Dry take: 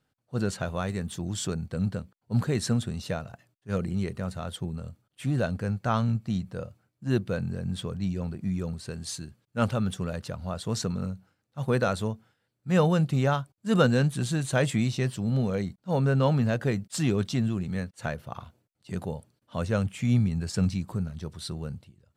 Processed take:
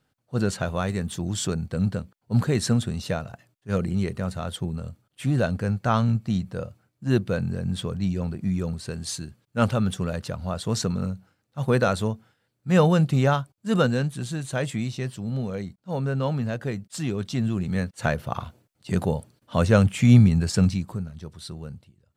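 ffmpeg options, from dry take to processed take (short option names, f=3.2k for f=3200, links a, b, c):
-af "volume=15.5dB,afade=t=out:st=13.28:d=0.82:silence=0.473151,afade=t=in:st=17.2:d=1.07:silence=0.266073,afade=t=out:st=20.26:d=0.78:silence=0.281838"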